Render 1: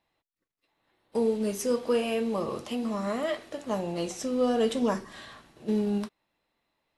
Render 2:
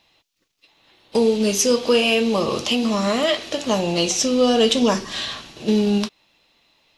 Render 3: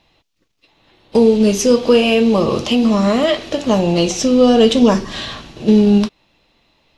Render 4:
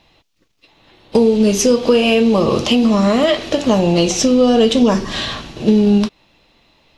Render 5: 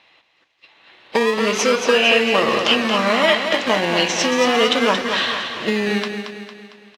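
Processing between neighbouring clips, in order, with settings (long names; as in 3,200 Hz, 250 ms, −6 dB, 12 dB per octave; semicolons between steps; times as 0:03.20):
flat-topped bell 4,100 Hz +10 dB; in parallel at +2 dB: downward compressor, threshold −33 dBFS, peak gain reduction 12 dB; on the sum: level +5.5 dB
spectral tilt −2 dB per octave; level +3.5 dB
downward compressor 2.5 to 1, threshold −15 dBFS, peak gain reduction 6.5 dB; level +4 dB
in parallel at −7.5 dB: sample-and-hold swept by an LFO 26×, swing 60% 0.32 Hz; on the sum: resonant band-pass 1,900 Hz, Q 1.1; repeating echo 227 ms, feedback 48%, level −7.5 dB; level +5.5 dB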